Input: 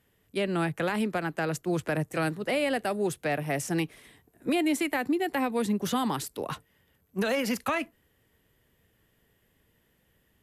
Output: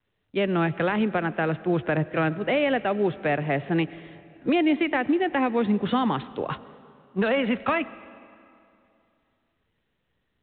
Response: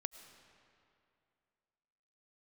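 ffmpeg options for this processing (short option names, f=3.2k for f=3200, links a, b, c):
-filter_complex "[0:a]agate=range=-33dB:threshold=-57dB:ratio=3:detection=peak,asplit=2[a][b];[1:a]atrim=start_sample=2205,lowpass=4k[c];[b][c]afir=irnorm=-1:irlink=0,volume=-0.5dB[d];[a][d]amix=inputs=2:normalize=0" -ar 8000 -c:a pcm_mulaw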